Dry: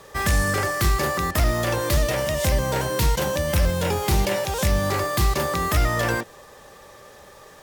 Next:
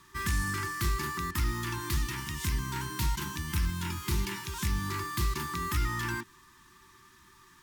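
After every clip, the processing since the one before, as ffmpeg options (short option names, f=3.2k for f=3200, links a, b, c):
-af "afftfilt=real='re*(1-between(b*sr/4096,390,870))':imag='im*(1-between(b*sr/4096,390,870))':win_size=4096:overlap=0.75,volume=-9dB"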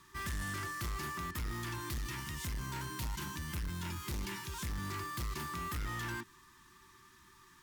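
-af "asoftclip=type=tanh:threshold=-31.5dB,volume=-3dB"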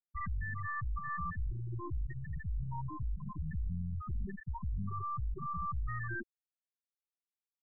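-af "aeval=exprs='(tanh(200*val(0)+0.45)-tanh(0.45))/200':c=same,highshelf=f=11k:g=7.5,afftfilt=real='re*gte(hypot(re,im),0.02)':imag='im*gte(hypot(re,im),0.02)':win_size=1024:overlap=0.75,volume=13dB"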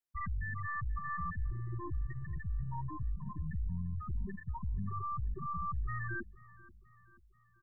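-af "aecho=1:1:484|968|1452|1936:0.0891|0.0481|0.026|0.014"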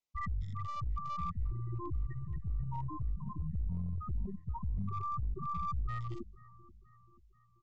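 -af "aresample=16000,aeval=exprs='clip(val(0),-1,0.0133)':c=same,aresample=44100,asuperstop=centerf=1600:order=20:qfactor=3.1,volume=1dB"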